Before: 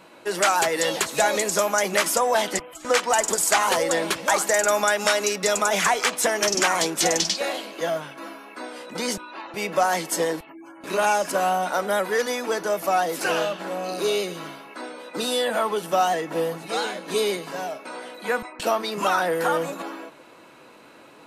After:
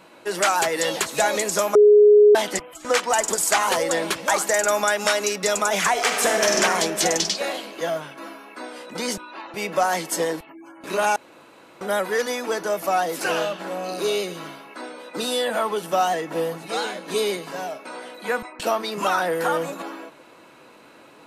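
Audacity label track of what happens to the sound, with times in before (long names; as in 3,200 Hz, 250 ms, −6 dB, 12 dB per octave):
1.750000	2.350000	beep over 417 Hz −8.5 dBFS
5.910000	6.560000	thrown reverb, RT60 2.7 s, DRR 0 dB
11.160000	11.810000	fill with room tone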